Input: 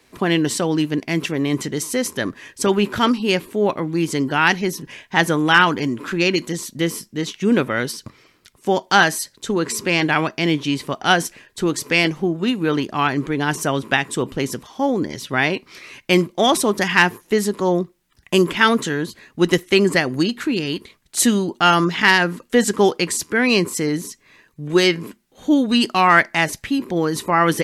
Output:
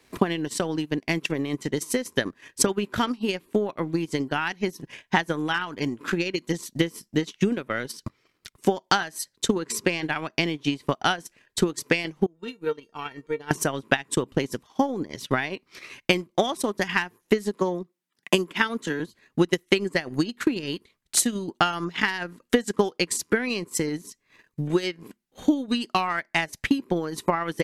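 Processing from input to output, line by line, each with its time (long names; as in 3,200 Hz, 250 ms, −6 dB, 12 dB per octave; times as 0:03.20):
0:12.26–0:13.51: tuned comb filter 460 Hz, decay 0.17 s, mix 90%
0:17.55–0:19.00: Butterworth high-pass 160 Hz
whole clip: downward compressor 4 to 1, threshold −22 dBFS; transient designer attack +10 dB, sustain −12 dB; level −4 dB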